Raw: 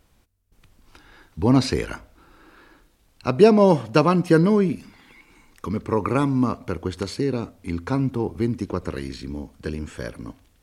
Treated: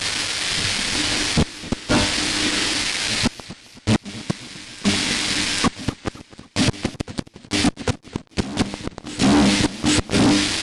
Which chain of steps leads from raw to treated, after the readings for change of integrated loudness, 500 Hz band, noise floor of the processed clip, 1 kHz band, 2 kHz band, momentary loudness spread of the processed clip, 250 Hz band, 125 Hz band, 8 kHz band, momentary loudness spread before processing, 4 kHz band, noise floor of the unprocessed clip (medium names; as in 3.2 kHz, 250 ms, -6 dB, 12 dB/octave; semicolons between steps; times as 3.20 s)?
+1.0 dB, -6.5 dB, -51 dBFS, 0.0 dB, +11.5 dB, 13 LU, +1.0 dB, 0.0 dB, +19.5 dB, 17 LU, +17.5 dB, -62 dBFS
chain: low-pass that closes with the level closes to 350 Hz, closed at -14.5 dBFS; graphic EQ 125/250/2000/8000 Hz +7/+11/-8/+9 dB; compression 3:1, threshold -17 dBFS, peak gain reduction 11 dB; band noise 1.6–5.3 kHz -43 dBFS; feedback comb 100 Hz, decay 0.56 s, harmonics all, mix 80%; inverted gate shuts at -23 dBFS, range -39 dB; fuzz box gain 57 dB, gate -50 dBFS; reverse echo 798 ms -15.5 dB; resampled via 22.05 kHz; modulated delay 261 ms, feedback 52%, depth 184 cents, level -19 dB